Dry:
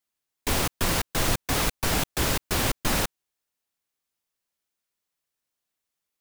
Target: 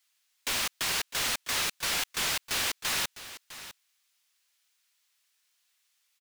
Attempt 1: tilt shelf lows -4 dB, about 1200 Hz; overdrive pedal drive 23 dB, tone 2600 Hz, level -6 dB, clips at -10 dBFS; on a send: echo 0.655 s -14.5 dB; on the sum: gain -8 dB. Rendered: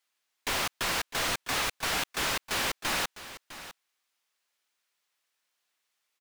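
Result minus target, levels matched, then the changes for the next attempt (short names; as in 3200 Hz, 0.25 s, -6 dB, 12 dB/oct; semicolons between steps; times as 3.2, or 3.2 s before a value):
1000 Hz band +5.0 dB
change: tilt shelf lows -12.5 dB, about 1200 Hz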